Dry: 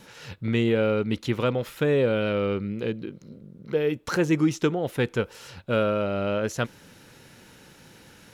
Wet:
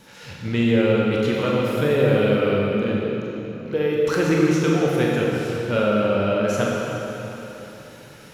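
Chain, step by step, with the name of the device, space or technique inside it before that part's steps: tunnel (flutter echo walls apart 7.3 m, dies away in 0.26 s; reverb RT60 3.6 s, pre-delay 23 ms, DRR -3.5 dB)

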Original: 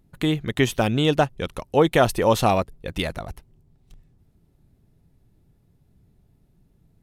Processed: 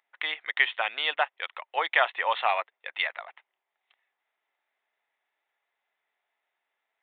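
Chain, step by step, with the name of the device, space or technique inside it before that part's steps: musical greeting card (downsampling 8000 Hz; HPF 780 Hz 24 dB/oct; bell 2000 Hz +9 dB 0.49 oct); gain -2 dB

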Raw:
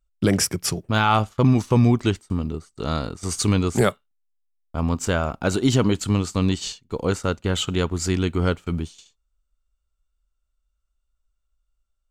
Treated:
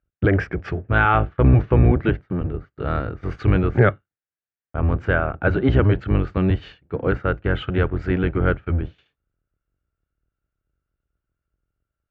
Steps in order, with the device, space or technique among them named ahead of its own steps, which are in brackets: sub-octave bass pedal (octaver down 1 oct, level +2 dB; speaker cabinet 64–2300 Hz, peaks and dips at 160 Hz -3 dB, 230 Hz -9 dB, 990 Hz -7 dB, 1600 Hz +7 dB); gain +2 dB

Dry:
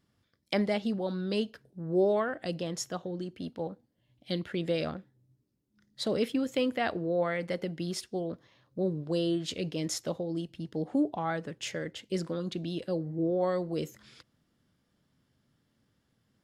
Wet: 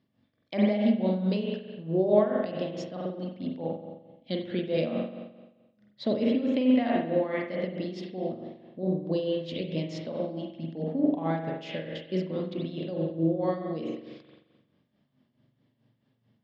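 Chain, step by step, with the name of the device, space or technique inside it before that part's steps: combo amplifier with spring reverb and tremolo (spring tank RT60 1.2 s, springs 43 ms, chirp 55 ms, DRR -0.5 dB; tremolo 4.6 Hz, depth 62%; speaker cabinet 80–4400 Hz, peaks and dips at 82 Hz -7 dB, 120 Hz +5 dB, 240 Hz +8 dB, 620 Hz +5 dB, 1400 Hz -8 dB)

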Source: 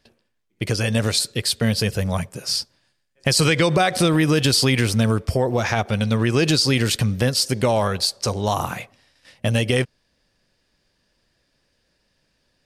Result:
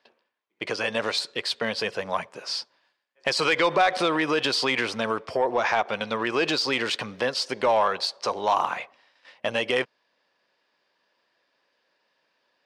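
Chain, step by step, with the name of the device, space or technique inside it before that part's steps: intercom (BPF 460–3600 Hz; bell 1000 Hz +6 dB 0.5 oct; soft clip -11 dBFS, distortion -20 dB)

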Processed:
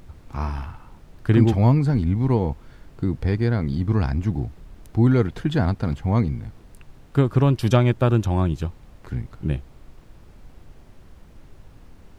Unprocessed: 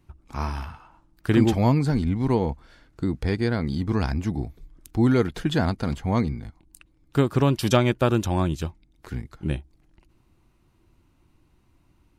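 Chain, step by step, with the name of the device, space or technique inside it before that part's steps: car interior (bell 110 Hz +6.5 dB 0.88 oct; high shelf 3500 Hz -8 dB; brown noise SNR 21 dB)

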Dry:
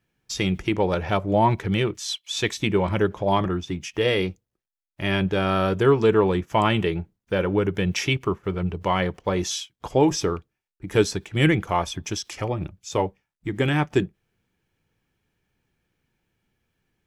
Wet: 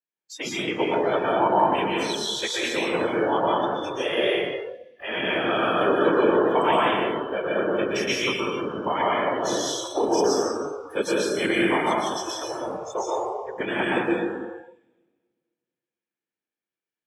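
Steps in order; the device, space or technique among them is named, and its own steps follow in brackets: whispering ghost (whisperiser; HPF 360 Hz 12 dB/oct; reverb RT60 1.8 s, pre-delay 0.111 s, DRR -5.5 dB); spectral noise reduction 19 dB; 8.85–9.42 steep low-pass 10000 Hz; gain -4 dB

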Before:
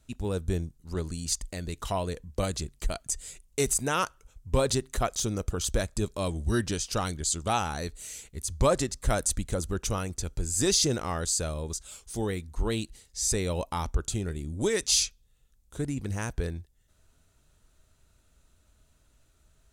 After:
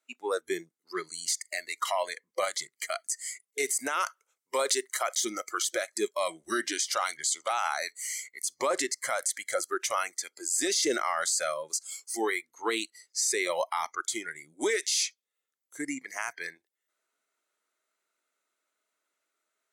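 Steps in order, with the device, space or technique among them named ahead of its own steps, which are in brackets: spectral noise reduction 19 dB; laptop speaker (HPF 340 Hz 24 dB/oct; bell 1300 Hz +6 dB 0.58 oct; bell 2100 Hz +10.5 dB 0.23 oct; limiter -24 dBFS, peak gain reduction 13.5 dB); 4–5.09 tone controls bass -13 dB, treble +5 dB; gain +6 dB

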